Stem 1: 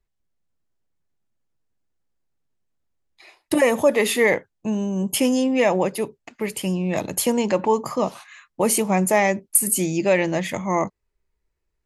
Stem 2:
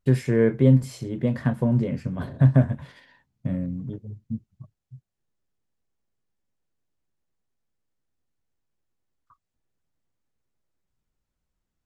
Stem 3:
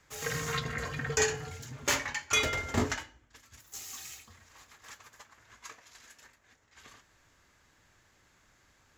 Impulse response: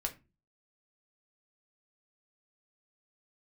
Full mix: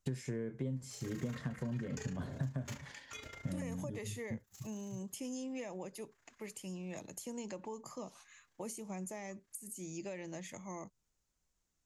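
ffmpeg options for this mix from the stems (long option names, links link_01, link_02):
-filter_complex "[0:a]volume=-17dB,asplit=2[link_01][link_02];[1:a]volume=-1dB[link_03];[2:a]tremolo=f=28:d=0.667,adelay=800,volume=-11.5dB[link_04];[link_02]apad=whole_len=431144[link_05];[link_04][link_05]sidechaincompress=threshold=-46dB:ratio=8:attack=20:release=181[link_06];[link_01][link_03]amix=inputs=2:normalize=0,equalizer=frequency=6600:width=1.6:gain=11,acompressor=threshold=-32dB:ratio=8,volume=0dB[link_07];[link_06][link_07]amix=inputs=2:normalize=0,lowshelf=frequency=450:gain=-4,acrossover=split=390[link_08][link_09];[link_09]acompressor=threshold=-48dB:ratio=3[link_10];[link_08][link_10]amix=inputs=2:normalize=0"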